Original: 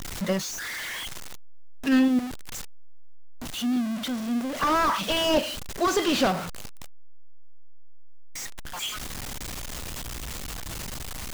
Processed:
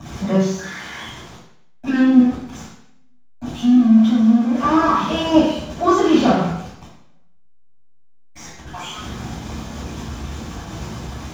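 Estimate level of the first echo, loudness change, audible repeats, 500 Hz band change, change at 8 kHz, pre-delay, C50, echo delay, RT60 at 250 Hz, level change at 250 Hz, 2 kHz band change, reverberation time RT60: none, +11.5 dB, none, +7.0 dB, n/a, 3 ms, 1.5 dB, none, 0.75 s, +12.0 dB, +2.5 dB, 0.70 s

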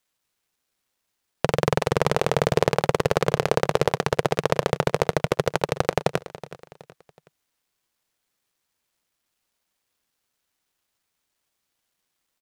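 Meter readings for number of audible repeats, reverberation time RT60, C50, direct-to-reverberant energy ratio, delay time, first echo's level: 3, none, none, none, 0.372 s, -16.0 dB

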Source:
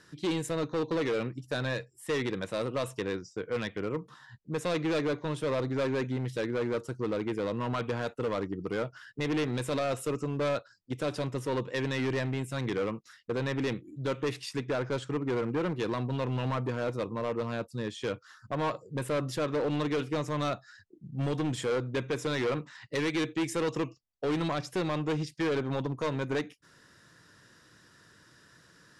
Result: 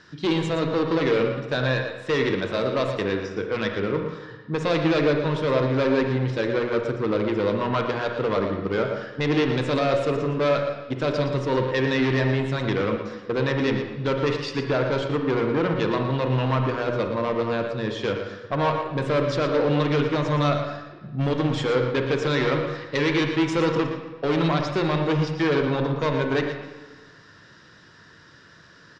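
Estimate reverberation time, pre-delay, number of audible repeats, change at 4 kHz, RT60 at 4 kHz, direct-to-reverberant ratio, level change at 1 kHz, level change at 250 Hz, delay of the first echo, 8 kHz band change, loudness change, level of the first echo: 1.3 s, 38 ms, 1, +8.0 dB, 1.1 s, 3.5 dB, +9.0 dB, +8.0 dB, 0.116 s, n/a, +8.5 dB, -9.5 dB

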